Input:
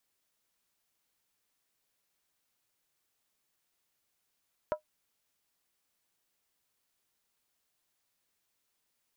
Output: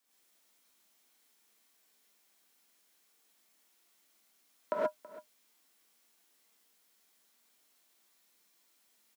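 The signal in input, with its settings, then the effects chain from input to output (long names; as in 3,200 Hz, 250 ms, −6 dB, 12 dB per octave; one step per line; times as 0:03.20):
struck skin, lowest mode 612 Hz, decay 0.11 s, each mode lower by 6.5 dB, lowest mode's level −23 dB
Butterworth high-pass 180 Hz 48 dB per octave
single-tap delay 327 ms −18.5 dB
reverb whose tail is shaped and stops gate 150 ms rising, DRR −7.5 dB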